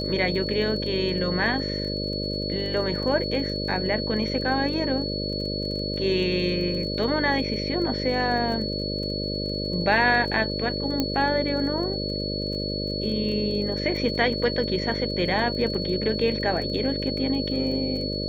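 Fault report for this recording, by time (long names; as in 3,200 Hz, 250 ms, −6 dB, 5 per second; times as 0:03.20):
mains buzz 50 Hz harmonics 12 −30 dBFS
surface crackle 24 per second −34 dBFS
whistle 4,400 Hz −31 dBFS
0:11.00: click −10 dBFS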